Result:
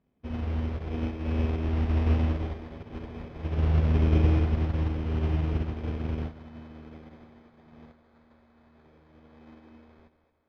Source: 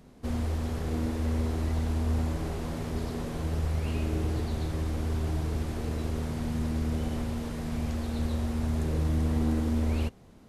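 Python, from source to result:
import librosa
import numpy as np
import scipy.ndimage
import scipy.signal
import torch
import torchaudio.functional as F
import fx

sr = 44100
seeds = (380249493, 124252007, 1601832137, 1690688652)

y = fx.highpass(x, sr, hz=fx.steps((0.0, 45.0), (6.29, 370.0), (7.92, 820.0)), slope=6)
y = fx.sample_hold(y, sr, seeds[0], rate_hz=2800.0, jitter_pct=0)
y = fx.air_absorb(y, sr, metres=270.0)
y = fx.echo_split(y, sr, split_hz=310.0, low_ms=164, high_ms=221, feedback_pct=52, wet_db=-8.5)
y = fx.upward_expand(y, sr, threshold_db=-42.0, expansion=2.5)
y = y * 10.0 ** (7.5 / 20.0)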